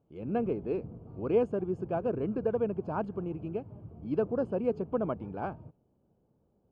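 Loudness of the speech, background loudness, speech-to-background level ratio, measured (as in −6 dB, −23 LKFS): −33.0 LKFS, −47.5 LKFS, 14.5 dB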